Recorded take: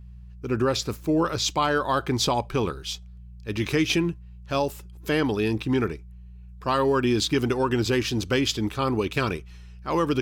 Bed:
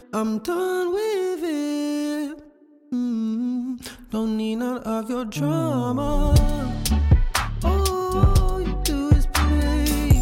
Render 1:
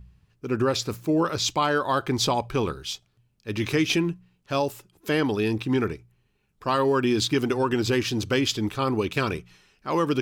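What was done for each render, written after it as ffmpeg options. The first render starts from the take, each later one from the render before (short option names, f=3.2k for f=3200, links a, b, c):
-af "bandreject=f=60:t=h:w=4,bandreject=f=120:t=h:w=4,bandreject=f=180:t=h:w=4"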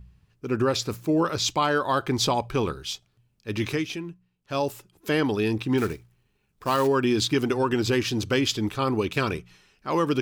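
-filter_complex "[0:a]asplit=3[a][b][c];[a]afade=t=out:st=5.77:d=0.02[d];[b]acrusher=bits=4:mode=log:mix=0:aa=0.000001,afade=t=in:st=5.77:d=0.02,afade=t=out:st=6.86:d=0.02[e];[c]afade=t=in:st=6.86:d=0.02[f];[d][e][f]amix=inputs=3:normalize=0,asplit=3[g][h][i];[g]atrim=end=3.91,asetpts=PTS-STARTPTS,afade=t=out:st=3.62:d=0.29:silence=0.298538[j];[h]atrim=start=3.91:end=4.37,asetpts=PTS-STARTPTS,volume=-10.5dB[k];[i]atrim=start=4.37,asetpts=PTS-STARTPTS,afade=t=in:d=0.29:silence=0.298538[l];[j][k][l]concat=n=3:v=0:a=1"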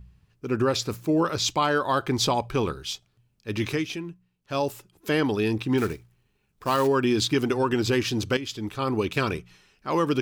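-filter_complex "[0:a]asplit=2[a][b];[a]atrim=end=8.37,asetpts=PTS-STARTPTS,afade=t=out:st=8.366:d=0.004:c=hsin:silence=0.223872[c];[b]atrim=start=8.37,asetpts=PTS-STARTPTS,afade=t=in:d=0.64:silence=0.223872[d];[c][d]concat=n=2:v=0:a=1"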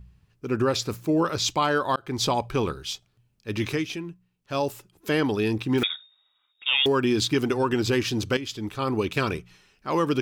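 -filter_complex "[0:a]asettb=1/sr,asplit=3[a][b][c];[a]atrim=end=5.834[d];[b]atrim=start=5.83:end=6.86,asetpts=PTS-STARTPTS,afade=t=in:d=0.004:c=qsin,afade=t=out:st=1.026:d=0.004:c=qsin,lowpass=f=3.2k:t=q:w=0.5098,lowpass=f=3.2k:t=q:w=0.6013,lowpass=f=3.2k:t=q:w=0.9,lowpass=f=3.2k:t=q:w=2.563,afreqshift=-3800[e];[c]atrim=start=6.856[f];[d][e]acrossfade=d=0.004:c1=hsin:c2=qsin[g];[g][f]acrossfade=d=0.004:c1=qsin:c2=hsin,asplit=2[h][i];[h]atrim=end=1.96,asetpts=PTS-STARTPTS,afade=t=out:st=1.956:d=0.004:c=hsin[j];[i]atrim=start=1.96,asetpts=PTS-STARTPTS,afade=t=in:d=0.42:c=qsin[k];[j][k]concat=n=2:v=0:a=1"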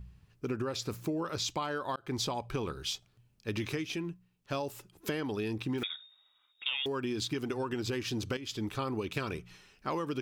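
-af "acompressor=threshold=-31dB:ratio=10"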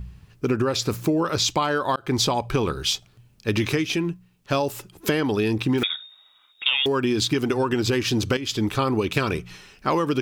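-af "volume=12dB"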